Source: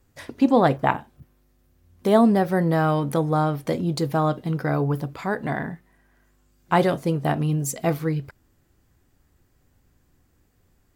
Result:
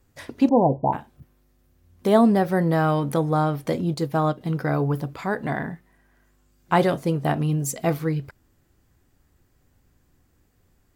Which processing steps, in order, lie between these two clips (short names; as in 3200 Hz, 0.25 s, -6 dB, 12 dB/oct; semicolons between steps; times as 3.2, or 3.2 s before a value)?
0.49–0.93 Chebyshev low-pass 1000 Hz, order 8; 3.94–4.41 upward expander 1.5:1, over -32 dBFS